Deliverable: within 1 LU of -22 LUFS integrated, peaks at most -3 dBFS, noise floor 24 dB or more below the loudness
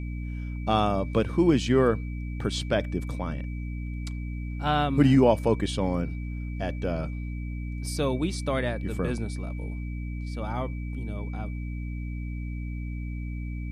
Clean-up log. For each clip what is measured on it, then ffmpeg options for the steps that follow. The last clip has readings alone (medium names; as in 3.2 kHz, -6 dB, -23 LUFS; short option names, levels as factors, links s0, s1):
hum 60 Hz; highest harmonic 300 Hz; hum level -30 dBFS; steady tone 2.3 kHz; tone level -48 dBFS; loudness -28.5 LUFS; peak level -8.0 dBFS; loudness target -22.0 LUFS
-> -af "bandreject=f=60:t=h:w=6,bandreject=f=120:t=h:w=6,bandreject=f=180:t=h:w=6,bandreject=f=240:t=h:w=6,bandreject=f=300:t=h:w=6"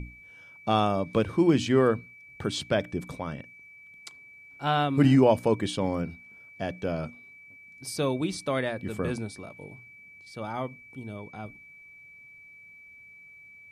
hum not found; steady tone 2.3 kHz; tone level -48 dBFS
-> -af "bandreject=f=2300:w=30"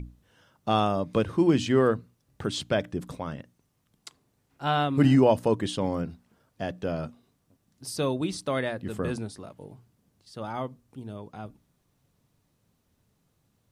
steady tone not found; loudness -27.0 LUFS; peak level -8.5 dBFS; loudness target -22.0 LUFS
-> -af "volume=1.78"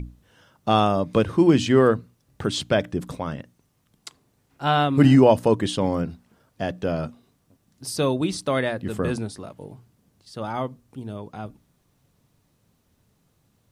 loudness -22.0 LUFS; peak level -3.5 dBFS; noise floor -67 dBFS